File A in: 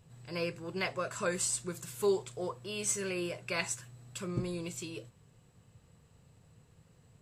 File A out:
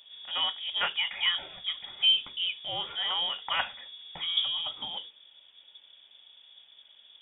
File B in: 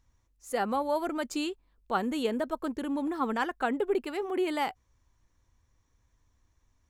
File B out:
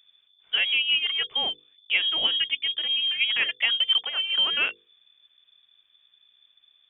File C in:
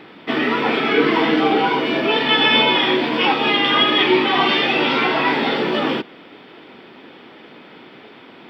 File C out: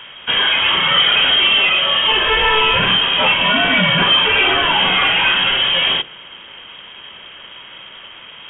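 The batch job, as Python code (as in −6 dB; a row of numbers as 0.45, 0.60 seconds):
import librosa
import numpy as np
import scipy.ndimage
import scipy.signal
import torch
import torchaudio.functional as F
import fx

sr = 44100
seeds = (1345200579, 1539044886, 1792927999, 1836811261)

y = 10.0 ** (-13.0 / 20.0) * np.tanh(x / 10.0 ** (-13.0 / 20.0))
y = fx.freq_invert(y, sr, carrier_hz=3500)
y = fx.low_shelf(y, sr, hz=130.0, db=-8.0)
y = fx.hum_notches(y, sr, base_hz=50, count=10)
y = y * 10.0 ** (5.5 / 20.0)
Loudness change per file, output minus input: +7.0, +8.5, +4.0 LU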